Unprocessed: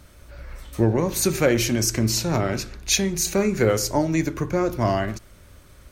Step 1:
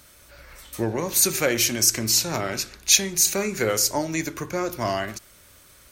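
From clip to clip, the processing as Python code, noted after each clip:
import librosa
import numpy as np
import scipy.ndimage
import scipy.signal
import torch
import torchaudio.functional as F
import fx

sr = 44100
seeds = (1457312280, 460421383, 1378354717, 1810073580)

y = fx.tilt_eq(x, sr, slope=2.5)
y = y * librosa.db_to_amplitude(-1.5)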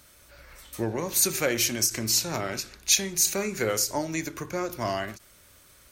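y = fx.end_taper(x, sr, db_per_s=270.0)
y = y * librosa.db_to_amplitude(-3.5)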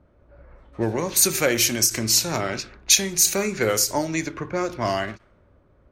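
y = fx.env_lowpass(x, sr, base_hz=600.0, full_db=-23.5)
y = y * librosa.db_to_amplitude(5.0)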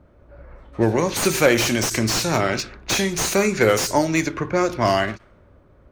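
y = fx.slew_limit(x, sr, full_power_hz=240.0)
y = y * librosa.db_to_amplitude(5.5)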